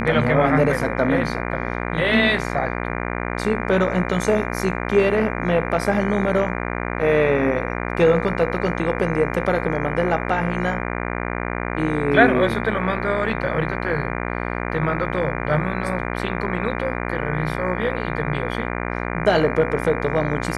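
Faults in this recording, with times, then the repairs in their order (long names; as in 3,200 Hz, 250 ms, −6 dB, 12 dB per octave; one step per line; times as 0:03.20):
mains buzz 60 Hz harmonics 40 −26 dBFS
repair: hum removal 60 Hz, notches 40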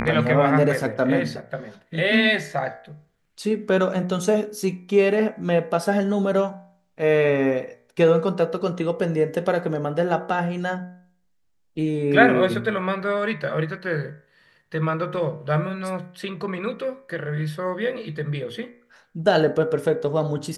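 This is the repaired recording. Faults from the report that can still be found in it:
none of them is left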